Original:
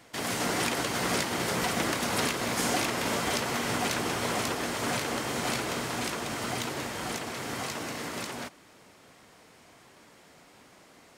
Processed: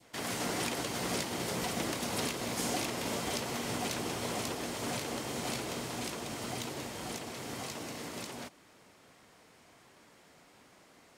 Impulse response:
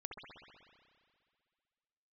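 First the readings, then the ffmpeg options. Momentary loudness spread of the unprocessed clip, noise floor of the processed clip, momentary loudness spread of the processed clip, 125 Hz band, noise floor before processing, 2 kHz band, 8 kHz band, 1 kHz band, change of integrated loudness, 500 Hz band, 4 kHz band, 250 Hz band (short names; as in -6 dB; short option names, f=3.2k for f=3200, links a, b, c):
7 LU, -61 dBFS, 7 LU, -4.5 dB, -56 dBFS, -8.5 dB, -4.5 dB, -7.0 dB, -6.0 dB, -5.0 dB, -5.5 dB, -4.5 dB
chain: -af "adynamicequalizer=threshold=0.00562:dfrequency=1500:dqfactor=1.1:tfrequency=1500:tqfactor=1.1:attack=5:release=100:ratio=0.375:range=3:mode=cutabove:tftype=bell,volume=-4.5dB"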